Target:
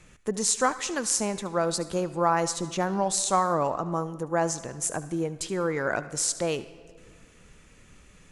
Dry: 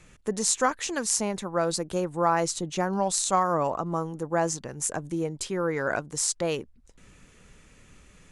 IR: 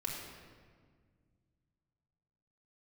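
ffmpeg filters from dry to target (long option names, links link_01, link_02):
-filter_complex "[0:a]asplit=2[link_01][link_02];[1:a]atrim=start_sample=2205,lowshelf=frequency=340:gain=-10.5,adelay=73[link_03];[link_02][link_03]afir=irnorm=-1:irlink=0,volume=-14.5dB[link_04];[link_01][link_04]amix=inputs=2:normalize=0"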